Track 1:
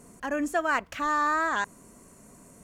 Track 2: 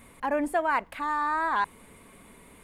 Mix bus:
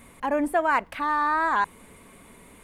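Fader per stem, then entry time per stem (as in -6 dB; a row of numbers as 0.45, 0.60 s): -11.5, +2.0 dB; 0.00, 0.00 s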